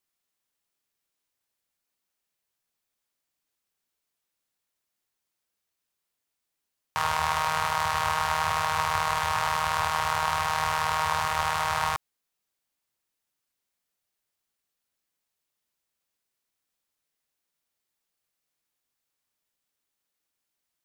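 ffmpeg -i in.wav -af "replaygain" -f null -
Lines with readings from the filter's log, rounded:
track_gain = +11.3 dB
track_peak = 0.241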